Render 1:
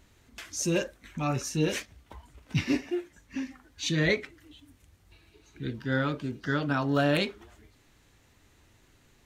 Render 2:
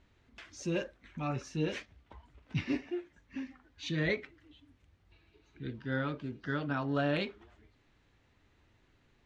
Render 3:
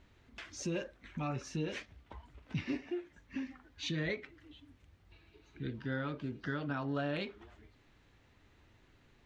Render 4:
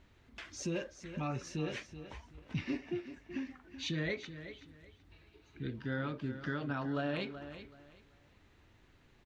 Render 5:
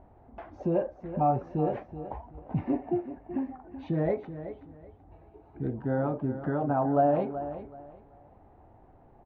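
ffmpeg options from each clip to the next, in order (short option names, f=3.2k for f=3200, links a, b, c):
-af "lowpass=3.8k,volume=-6dB"
-af "acompressor=threshold=-39dB:ratio=2.5,volume=3dB"
-af "aecho=1:1:378|756|1134:0.251|0.0603|0.0145"
-af "lowpass=f=760:t=q:w=4.9,volume=7dB"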